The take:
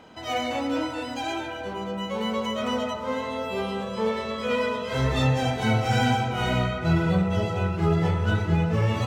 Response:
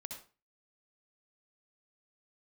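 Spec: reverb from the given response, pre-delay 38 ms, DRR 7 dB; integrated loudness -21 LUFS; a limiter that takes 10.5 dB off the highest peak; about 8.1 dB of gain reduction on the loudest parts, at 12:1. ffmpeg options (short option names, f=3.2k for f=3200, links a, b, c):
-filter_complex "[0:a]acompressor=threshold=-25dB:ratio=12,alimiter=level_in=3.5dB:limit=-24dB:level=0:latency=1,volume=-3.5dB,asplit=2[a][b];[1:a]atrim=start_sample=2205,adelay=38[c];[b][c]afir=irnorm=-1:irlink=0,volume=-4dB[d];[a][d]amix=inputs=2:normalize=0,volume=14dB"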